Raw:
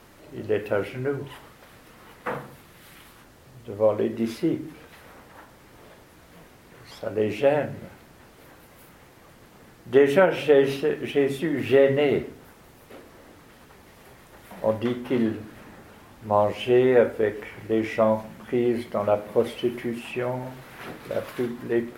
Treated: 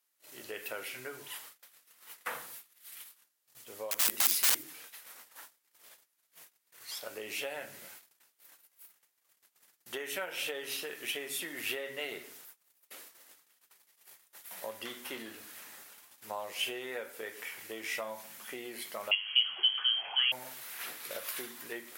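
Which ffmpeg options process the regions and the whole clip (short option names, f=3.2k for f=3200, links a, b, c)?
-filter_complex "[0:a]asettb=1/sr,asplit=3[a][b][c];[a]atrim=end=3.914[d];[b]atrim=start=3.91:end=4.63,asetpts=PTS-STARTPTS,afade=t=in:d=0.004:c=qsin,afade=t=out:st=0.716:d=0.004:c=qsin,highshelf=f=8.4k:g=10,bandreject=f=50:t=h:w=6,bandreject=f=100:t=h:w=6,bandreject=f=150:t=h:w=6,bandreject=f=200:t=h:w=6,bandreject=f=250:t=h:w=6,bandreject=f=300:t=h:w=6,bandreject=f=350:t=h:w=6,aeval=exprs='(mod(15*val(0)+1,2)-1)/15':c=same[e];[c]atrim=start=4.626[f];[d][e]acrossfade=d=0.004:c1=hsin:c2=qsin[g];[g][f]acrossfade=d=0.004:c1=qsin:c2=hsin,asettb=1/sr,asplit=3[h][i][j];[h]atrim=end=19.114[k];[i]atrim=start=19.11:end=20.32,asetpts=PTS-STARTPTS,afade=t=in:d=0.004:c=qsin,afade=t=out:st=1.206:d=0.004:c=qsin,aemphasis=mode=production:type=75fm,lowpass=f=2.9k:t=q:w=0.5098,lowpass=f=2.9k:t=q:w=0.6013,lowpass=f=2.9k:t=q:w=0.9,lowpass=f=2.9k:t=q:w=2.563,afreqshift=-3400[l];[j]atrim=start=20.316[m];[k][l]acrossfade=d=0.004:c1=hsin:c2=qsin[n];[n][m]acrossfade=d=0.004:c1=qsin:c2=hsin,acompressor=threshold=-25dB:ratio=4,agate=range=-28dB:threshold=-47dB:ratio=16:detection=peak,aderivative,volume=9dB"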